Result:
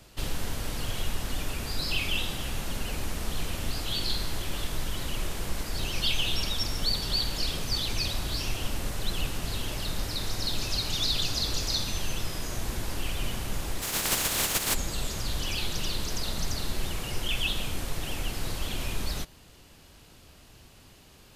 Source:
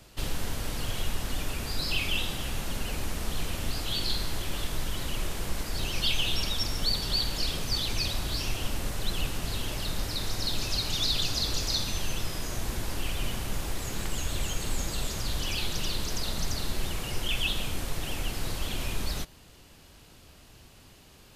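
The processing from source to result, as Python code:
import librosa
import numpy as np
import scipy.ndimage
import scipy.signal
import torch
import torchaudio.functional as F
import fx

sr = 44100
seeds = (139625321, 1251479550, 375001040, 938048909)

y = fx.spec_flatten(x, sr, power=0.3, at=(13.81, 14.73), fade=0.02)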